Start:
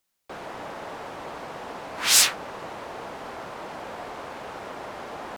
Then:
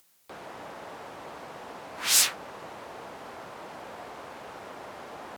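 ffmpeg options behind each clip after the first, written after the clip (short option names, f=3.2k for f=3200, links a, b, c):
-af "highpass=53,equalizer=f=15k:t=o:w=1.2:g=4.5,acompressor=mode=upward:threshold=-44dB:ratio=2.5,volume=-5.5dB"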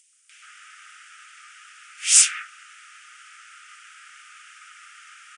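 -filter_complex "[0:a]acrossover=split=2000[a][b];[a]adelay=130[c];[c][b]amix=inputs=2:normalize=0,afftfilt=real='re*between(b*sr/4096,1200,10000)':imag='im*between(b*sr/4096,1200,10000)':win_size=4096:overlap=0.75,aexciter=amount=1.5:drive=0.8:freq=2.2k,volume=3.5dB"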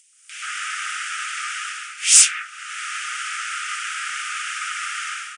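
-af "dynaudnorm=f=140:g=5:m=15.5dB,apsyclip=6.5dB,volume=-3dB"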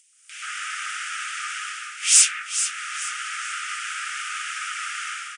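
-af "aecho=1:1:432|864|1296|1728:0.316|0.114|0.041|0.0148,volume=-3dB"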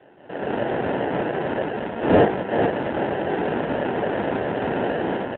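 -filter_complex "[0:a]acrusher=samples=38:mix=1:aa=0.000001,asplit=2[a][b];[b]highpass=f=720:p=1,volume=23dB,asoftclip=type=tanh:threshold=-5.5dB[c];[a][c]amix=inputs=2:normalize=0,lowpass=f=1.3k:p=1,volume=-6dB" -ar 8000 -c:a libopencore_amrnb -b:a 7950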